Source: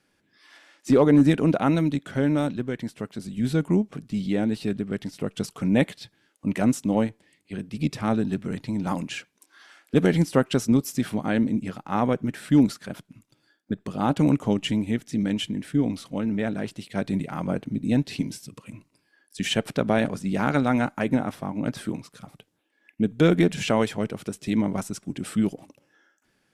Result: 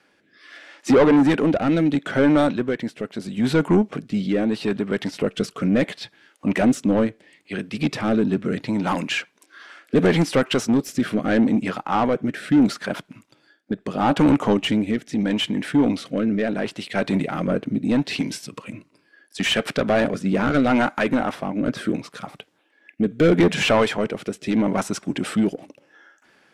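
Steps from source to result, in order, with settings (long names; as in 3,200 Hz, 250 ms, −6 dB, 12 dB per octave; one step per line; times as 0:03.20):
mid-hump overdrive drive 23 dB, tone 2,000 Hz, clips at −6 dBFS
rotating-speaker cabinet horn 0.75 Hz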